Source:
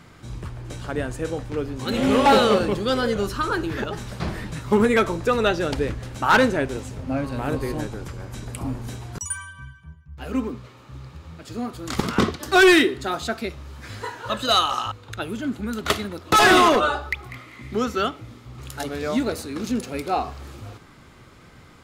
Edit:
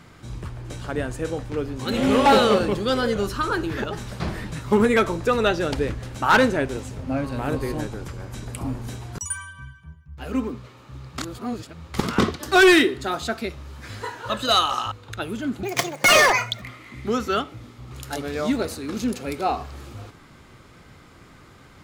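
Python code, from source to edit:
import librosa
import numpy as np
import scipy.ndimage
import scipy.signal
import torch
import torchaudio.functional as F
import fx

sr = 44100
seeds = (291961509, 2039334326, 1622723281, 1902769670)

y = fx.edit(x, sr, fx.reverse_span(start_s=11.18, length_s=0.76),
    fx.speed_span(start_s=15.63, length_s=1.66, speed=1.68), tone=tone)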